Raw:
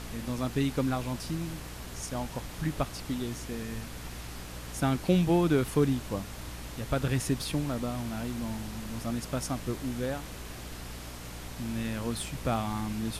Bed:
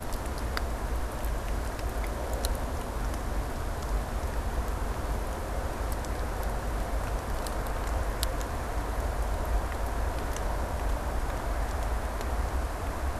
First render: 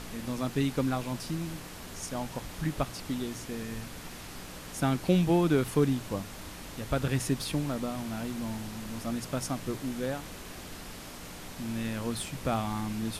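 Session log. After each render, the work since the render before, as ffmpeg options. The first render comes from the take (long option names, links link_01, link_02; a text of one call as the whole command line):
ffmpeg -i in.wav -af "bandreject=frequency=60:width_type=h:width=6,bandreject=frequency=120:width_type=h:width=6" out.wav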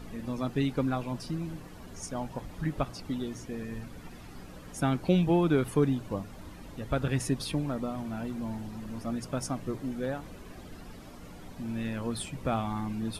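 ffmpeg -i in.wav -af "afftdn=noise_reduction=12:noise_floor=-44" out.wav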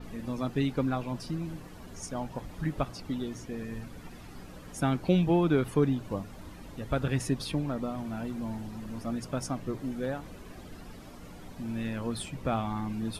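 ffmpeg -i in.wav -af "adynamicequalizer=threshold=0.00126:dfrequency=9800:dqfactor=0.95:tfrequency=9800:tqfactor=0.95:attack=5:release=100:ratio=0.375:range=2.5:mode=cutabove:tftype=bell" out.wav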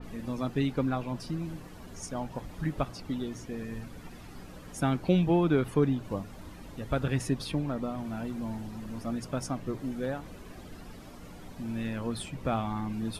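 ffmpeg -i in.wav -af "adynamicequalizer=threshold=0.00398:dfrequency=3900:dqfactor=0.7:tfrequency=3900:tqfactor=0.7:attack=5:release=100:ratio=0.375:range=1.5:mode=cutabove:tftype=highshelf" out.wav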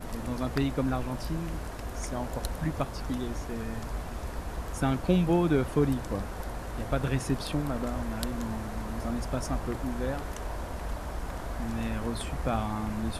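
ffmpeg -i in.wav -i bed.wav -filter_complex "[1:a]volume=-5dB[link_01];[0:a][link_01]amix=inputs=2:normalize=0" out.wav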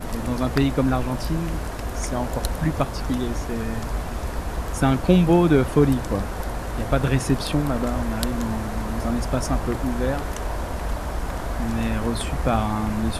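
ffmpeg -i in.wav -af "volume=8dB" out.wav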